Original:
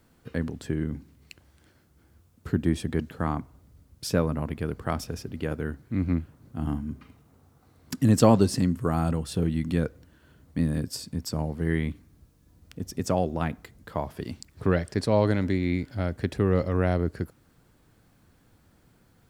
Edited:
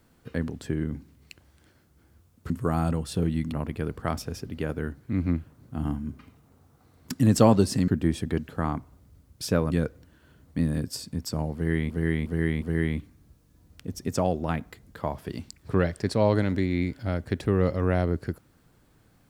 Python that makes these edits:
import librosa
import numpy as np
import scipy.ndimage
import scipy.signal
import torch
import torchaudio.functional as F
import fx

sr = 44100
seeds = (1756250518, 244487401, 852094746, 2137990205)

y = fx.edit(x, sr, fx.swap(start_s=2.5, length_s=1.84, other_s=8.7, other_length_s=1.02),
    fx.repeat(start_s=11.54, length_s=0.36, count=4), tone=tone)